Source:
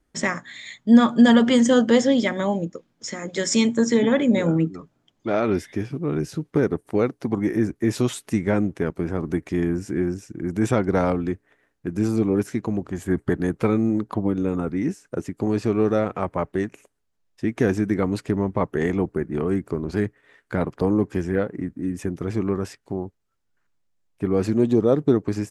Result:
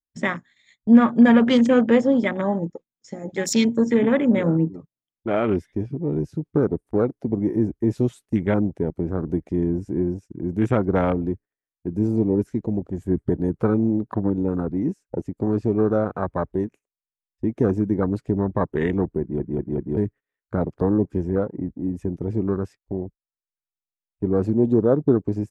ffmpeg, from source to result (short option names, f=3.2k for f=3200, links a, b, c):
-filter_complex "[0:a]asplit=5[a][b][c][d][e];[a]atrim=end=19.402[f];[b]atrim=start=19.208:end=19.402[g];[c]atrim=start=19.208:end=19.402[h];[d]atrim=start=19.208:end=19.402[i];[e]atrim=start=19.968[j];[f][g]acrossfade=d=0.004:c1=hsin:c2=hsin[k];[k][h]acrossfade=d=0.004:c1=hsin:c2=hsin[l];[l][i]acrossfade=d=0.004:c1=hsin:c2=hsin[m];[m][j]acrossfade=d=0.004:c1=hsin:c2=hsin,agate=range=-17dB:threshold=-38dB:ratio=16:detection=peak,afwtdn=0.0316,lowshelf=f=73:g=5.5"